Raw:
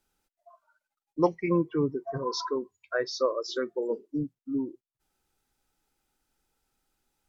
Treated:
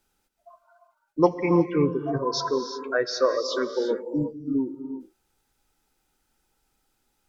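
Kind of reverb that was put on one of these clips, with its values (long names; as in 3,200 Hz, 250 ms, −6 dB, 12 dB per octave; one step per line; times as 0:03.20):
reverb whose tail is shaped and stops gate 390 ms rising, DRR 7.5 dB
level +4.5 dB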